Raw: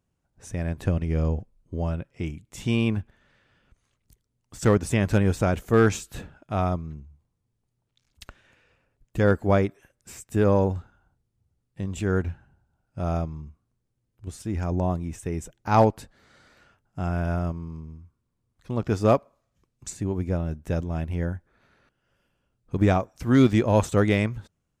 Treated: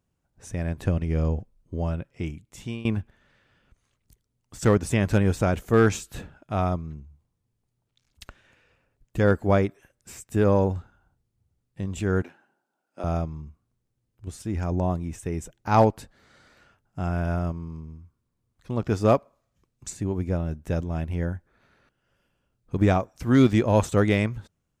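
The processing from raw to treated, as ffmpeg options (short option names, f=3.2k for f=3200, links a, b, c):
-filter_complex "[0:a]asettb=1/sr,asplit=3[a][b][c];[a]atrim=end=12.224[d];[b]atrim=start=12.22:end=13.04,asetpts=PTS-STARTPTS,afade=t=in:d=0.004:c=qsin,afade=t=out:st=0.816:d=0.004:c=qsin,highpass=f=270:w=0.5412,highpass=f=270:w=1.3066[e];[c]atrim=start=13.036[f];[d][e]acrossfade=d=0.004:c1=hsin:c2=qsin[g];[g][f]acrossfade=d=0.004:c1=qsin:c2=hsin,asplit=2[h][i];[h]atrim=end=2.85,asetpts=PTS-STARTPTS,afade=t=out:st=2.11:d=0.74:c=qsin:silence=0.112202[j];[i]atrim=start=2.85,asetpts=PTS-STARTPTS,afade=t=in:d=0.004:c=hsin:silence=0.112202[k];[j][k]concat=n=2:v=0:a=1"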